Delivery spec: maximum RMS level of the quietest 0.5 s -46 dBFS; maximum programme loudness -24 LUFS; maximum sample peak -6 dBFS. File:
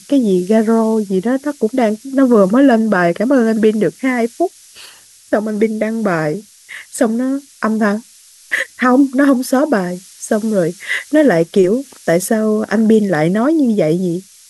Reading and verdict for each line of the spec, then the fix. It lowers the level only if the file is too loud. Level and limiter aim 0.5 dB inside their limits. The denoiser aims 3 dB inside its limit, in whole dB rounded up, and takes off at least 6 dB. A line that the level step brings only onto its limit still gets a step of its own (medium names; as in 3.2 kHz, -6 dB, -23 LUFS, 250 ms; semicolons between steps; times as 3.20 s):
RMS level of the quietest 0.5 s -44 dBFS: fail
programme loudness -15.0 LUFS: fail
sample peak -1.5 dBFS: fail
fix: trim -9.5 dB